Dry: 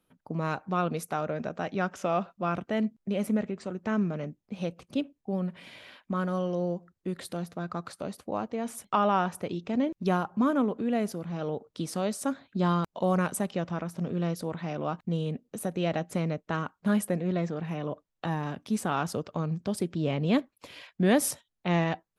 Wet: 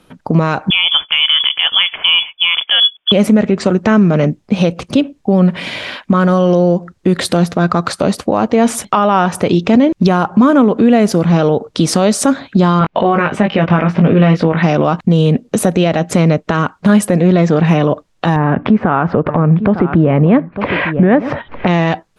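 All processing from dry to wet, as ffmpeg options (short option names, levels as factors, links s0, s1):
-filter_complex "[0:a]asettb=1/sr,asplit=3[s0][s1][s2];[s0]atrim=end=0.704[s3];[s1]atrim=start=0.7:end=3.12,asetpts=PTS-STARTPTS,afade=t=in:d=0.004:c=qsin,afade=t=out:st=2.416:d=0.004:c=qsin,highpass=f=360:p=1,equalizer=f=1600:w=5.9:g=-6.5,lowpass=f=3100:t=q:w=0.5098,lowpass=f=3100:t=q:w=0.6013,lowpass=f=3100:t=q:w=0.9,lowpass=f=3100:t=q:w=2.563,afreqshift=-3600[s4];[s2]atrim=start=3.116[s5];[s3][s4]acrossfade=d=0.004:c1=hsin:c2=qsin[s6];[s6][s5]acrossfade=d=0.004:c1=qsin:c2=hsin,asettb=1/sr,asplit=3[s7][s8][s9];[s7]atrim=end=12.794[s10];[s8]atrim=start=12.79:end=14.63,asetpts=PTS-STARTPTS,afade=t=in:d=0.004:c=qsin,afade=t=out:st=1.836:d=0.004:c=qsin,lowpass=f=2400:t=q:w=1.8,asplit=2[s11][s12];[s12]adelay=19,volume=0.596[s13];[s11][s13]amix=inputs=2:normalize=0,atrim=end_sample=81144[s14];[s9]atrim=start=14.626[s15];[s10][s14]acrossfade=d=0.004:c1=hsin:c2=qsin[s16];[s16][s15]acrossfade=d=0.004:c1=qsin:c2=hsin,asettb=1/sr,asplit=3[s17][s18][s19];[s17]atrim=end=18.364[s20];[s18]atrim=start=18.36:end=21.67,asetpts=PTS-STARTPTS,afade=t=in:d=0.004:c=qsin,afade=t=out:st=3.306:d=0.004:c=qsin,lowpass=f=2000:w=0.5412,lowpass=f=2000:w=1.3066,acompressor=mode=upward:threshold=0.0355:ratio=2.5:attack=3.2:release=140:knee=2.83:detection=peak,aecho=1:1:903:0.158,atrim=end_sample=145971[s21];[s19]atrim=start=21.666[s22];[s20][s21]acrossfade=d=0.004:c1=hsin:c2=qsin[s23];[s23][s22]acrossfade=d=0.004:c1=qsin:c2=hsin,lowpass=7900,acompressor=threshold=0.0316:ratio=6,alimiter=level_in=20:limit=0.891:release=50:level=0:latency=1,volume=0.891"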